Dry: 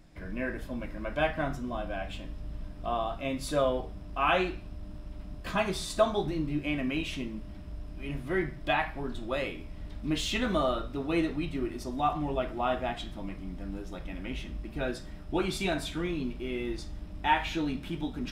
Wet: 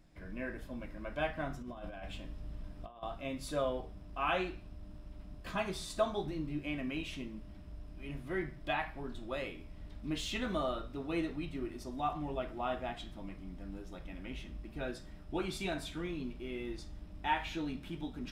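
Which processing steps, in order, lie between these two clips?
0:01.61–0:03.03: compressor whose output falls as the input rises −36 dBFS, ratio −0.5
level −7 dB

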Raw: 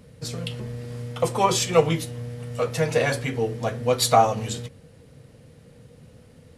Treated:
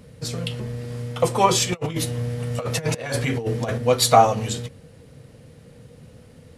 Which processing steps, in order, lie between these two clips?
0:01.72–0:03.78: compressor whose output falls as the input rises −27 dBFS, ratio −0.5
level +3 dB

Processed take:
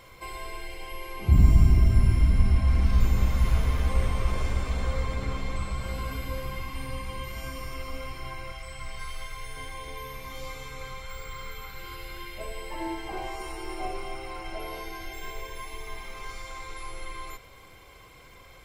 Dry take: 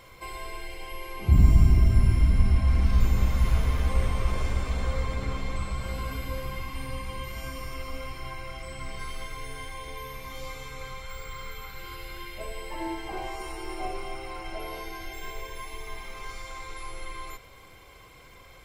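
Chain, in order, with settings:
0:08.52–0:09.57: parametric band 270 Hz −10.5 dB 1.7 octaves

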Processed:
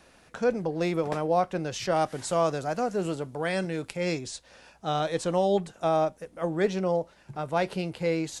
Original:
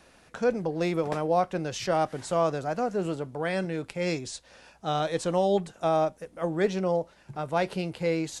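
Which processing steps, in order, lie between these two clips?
0:01.96–0:03.97: high-shelf EQ 4,100 Hz +6.5 dB

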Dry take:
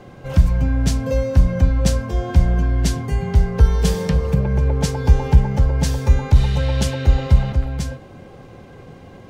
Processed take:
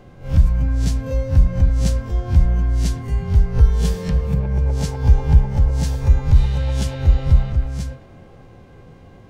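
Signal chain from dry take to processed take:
peak hold with a rise ahead of every peak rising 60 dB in 0.32 s
low-shelf EQ 87 Hz +10 dB
on a send: delay with a band-pass on its return 106 ms, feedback 71%, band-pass 1,200 Hz, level −12 dB
on the sum: level −7 dB

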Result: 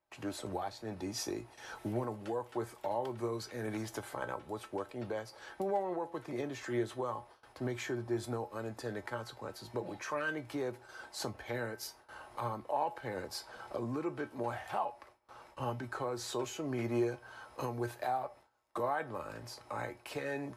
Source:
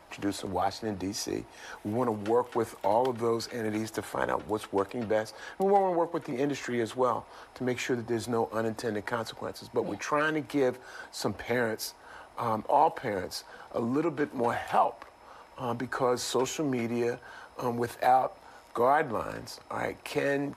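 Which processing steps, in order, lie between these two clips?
camcorder AGC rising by 12 dB per second
tuned comb filter 120 Hz, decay 0.18 s, harmonics odd, mix 70%
noise gate with hold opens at −41 dBFS
level −3 dB

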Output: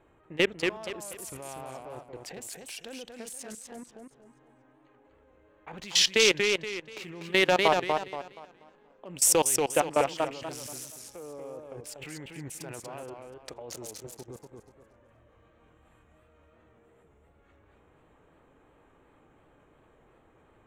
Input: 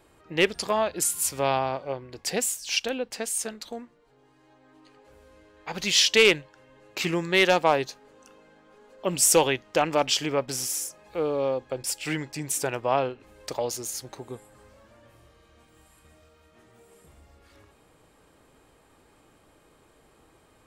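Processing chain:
adaptive Wiener filter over 9 samples
output level in coarse steps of 21 dB
feedback echo with a swinging delay time 239 ms, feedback 32%, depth 150 cents, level −4 dB

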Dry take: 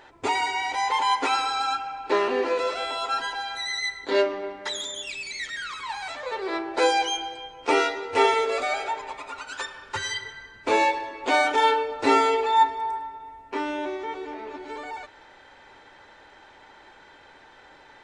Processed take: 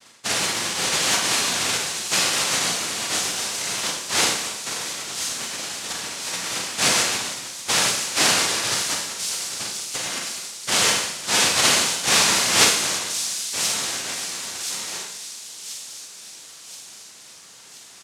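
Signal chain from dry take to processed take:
samples sorted by size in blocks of 64 samples
high-pass filter 650 Hz
noise gate with hold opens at −38 dBFS
comb filter 7.3 ms
cochlear-implant simulation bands 1
on a send: delay with a high-pass on its return 1,028 ms, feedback 53%, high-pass 4,800 Hz, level −5.5 dB
on the sum: four-comb reverb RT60 0.65 s, combs from 33 ms, DRR 1.5 dB
level −2.5 dB

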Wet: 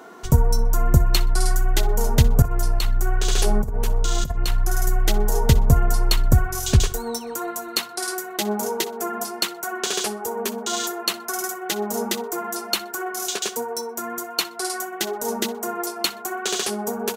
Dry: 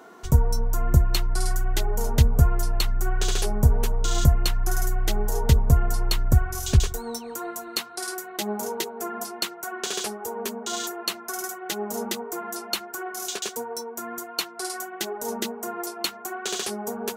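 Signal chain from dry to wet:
parametric band 67 Hz −5.5 dB 0.79 octaves
0:02.42–0:04.89: compressor whose output falls as the input rises −23 dBFS, ratio −0.5
repeating echo 62 ms, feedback 24%, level −19.5 dB
level +4.5 dB

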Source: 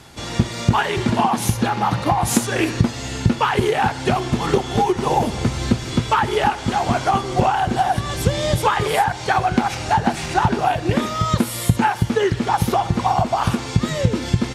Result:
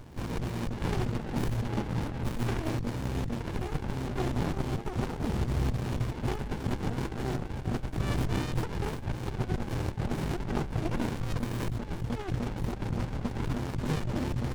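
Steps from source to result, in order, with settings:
high-shelf EQ 8,800 Hz +4.5 dB, from 0:11.65 −2.5 dB
compressor whose output falls as the input rises −23 dBFS, ratio −1
windowed peak hold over 65 samples
level −5.5 dB

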